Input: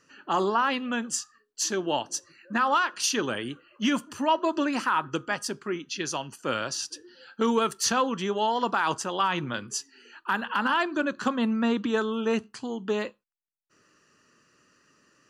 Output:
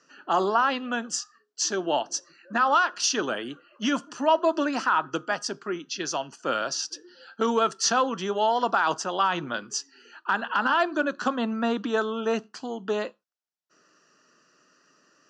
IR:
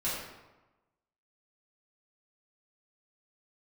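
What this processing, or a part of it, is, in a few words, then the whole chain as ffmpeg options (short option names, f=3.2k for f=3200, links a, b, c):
television speaker: -af "highpass=f=160:w=0.5412,highpass=f=160:w=1.3066,equalizer=f=220:t=q:w=4:g=-3,equalizer=f=680:t=q:w=4:g=7,equalizer=f=1.4k:t=q:w=4:g=4,equalizer=f=2.2k:t=q:w=4:g=-5,equalizer=f=5.4k:t=q:w=4:g=5,lowpass=f=7.2k:w=0.5412,lowpass=f=7.2k:w=1.3066"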